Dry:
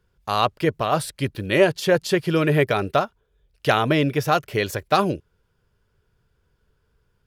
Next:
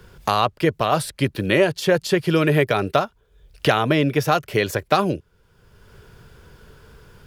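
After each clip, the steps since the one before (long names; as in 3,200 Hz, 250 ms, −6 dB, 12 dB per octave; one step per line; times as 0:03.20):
multiband upward and downward compressor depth 70%
level +1 dB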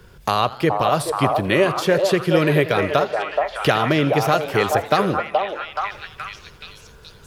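echo through a band-pass that steps 425 ms, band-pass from 690 Hz, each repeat 0.7 octaves, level 0 dB
feedback echo with a swinging delay time 81 ms, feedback 63%, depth 142 cents, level −18 dB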